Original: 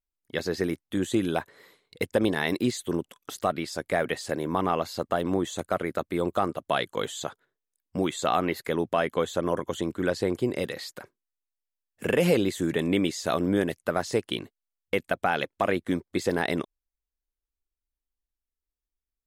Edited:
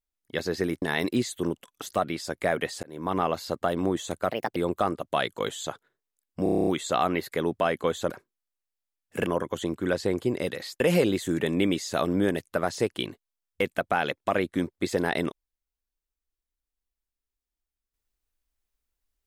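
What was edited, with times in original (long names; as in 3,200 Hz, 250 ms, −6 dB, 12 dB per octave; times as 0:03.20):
0:00.82–0:02.30: remove
0:04.31–0:04.65: fade in
0:05.79–0:06.13: play speed 135%
0:08.00: stutter 0.03 s, 9 plays
0:10.97–0:12.13: move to 0:09.43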